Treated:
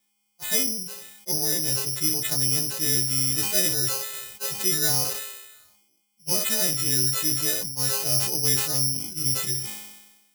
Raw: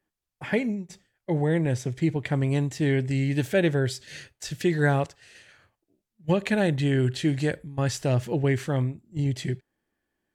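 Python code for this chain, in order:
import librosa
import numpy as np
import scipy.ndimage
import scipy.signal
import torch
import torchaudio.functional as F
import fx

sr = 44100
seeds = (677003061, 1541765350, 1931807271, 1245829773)

p1 = fx.freq_snap(x, sr, grid_st=3)
p2 = fx.high_shelf(p1, sr, hz=5000.0, db=9.5)
p3 = fx.rider(p2, sr, range_db=3, speed_s=0.5)
p4 = p2 + (p3 * 10.0 ** (-2.5 / 20.0))
p5 = fx.peak_eq(p4, sr, hz=8100.0, db=-13.0, octaves=0.78)
p6 = p5 + fx.room_early_taps(p5, sr, ms=(16, 61), db=(-15.0, -15.0), dry=0)
p7 = (np.kron(p6[::8], np.eye(8)[0]) * 8)[:len(p6)]
p8 = fx.sustainer(p7, sr, db_per_s=51.0)
y = p8 * 10.0 ** (-15.5 / 20.0)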